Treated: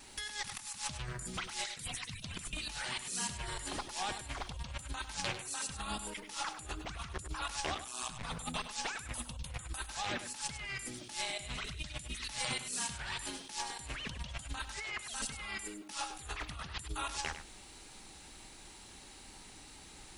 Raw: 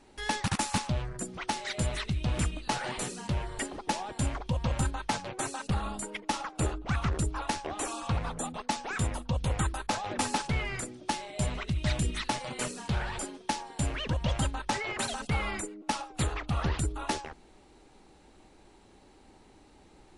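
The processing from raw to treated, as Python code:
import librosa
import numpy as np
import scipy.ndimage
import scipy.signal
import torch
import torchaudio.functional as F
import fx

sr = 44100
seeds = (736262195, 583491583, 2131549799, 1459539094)

y = fx.hpss_only(x, sr, part='percussive', at=(1.71, 2.53))
y = fx.high_shelf(y, sr, hz=8000.0, db=8.5)
y = fx.wow_flutter(y, sr, seeds[0], rate_hz=2.1, depth_cents=21.0)
y = fx.tone_stack(y, sr, knobs='5-5-5')
y = fx.over_compress(y, sr, threshold_db=-52.0, ratio=-1.0)
y = fx.ring_mod(y, sr, carrier_hz=61.0, at=(7.74, 8.22), fade=0.02)
y = fx.hum_notches(y, sr, base_hz=50, count=2)
y = y + 10.0 ** (-10.5 / 20.0) * np.pad(y, (int(100 * sr / 1000.0), 0))[:len(y)]
y = y * librosa.db_to_amplitude(10.0)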